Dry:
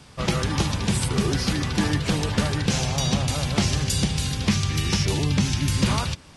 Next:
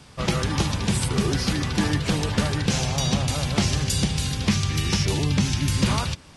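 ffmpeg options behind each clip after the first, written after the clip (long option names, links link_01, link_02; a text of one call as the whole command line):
ffmpeg -i in.wav -af anull out.wav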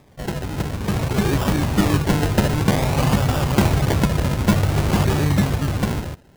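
ffmpeg -i in.wav -af "acrusher=samples=30:mix=1:aa=0.000001:lfo=1:lforange=18:lforate=0.53,dynaudnorm=framelen=230:gausssize=9:maxgain=11dB,volume=-3.5dB" out.wav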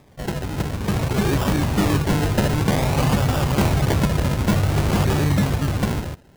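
ffmpeg -i in.wav -af "volume=13dB,asoftclip=hard,volume=-13dB" out.wav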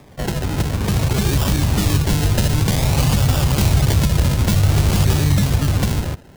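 ffmpeg -i in.wav -filter_complex "[0:a]acrossover=split=130|3000[link_01][link_02][link_03];[link_02]acompressor=threshold=-29dB:ratio=6[link_04];[link_01][link_04][link_03]amix=inputs=3:normalize=0,volume=7dB" out.wav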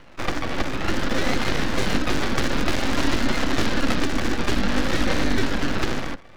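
ffmpeg -i in.wav -af "highpass=frequency=110:width=0.5412,highpass=frequency=110:width=1.3066,equalizer=frequency=400:width_type=q:width=4:gain=6,equalizer=frequency=570:width_type=q:width=4:gain=-7,equalizer=frequency=1600:width_type=q:width=4:gain=9,lowpass=frequency=4700:width=0.5412,lowpass=frequency=4700:width=1.3066,aeval=exprs='abs(val(0))':channel_layout=same,bandreject=frequency=430:width=12" out.wav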